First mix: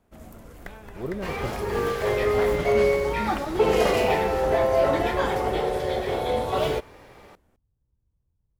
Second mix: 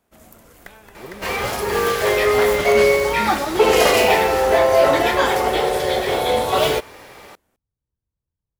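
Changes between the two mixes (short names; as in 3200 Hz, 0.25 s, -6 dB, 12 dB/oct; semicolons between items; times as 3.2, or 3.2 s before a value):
speech -3.5 dB; second sound +8.0 dB; master: add tilt +2 dB/oct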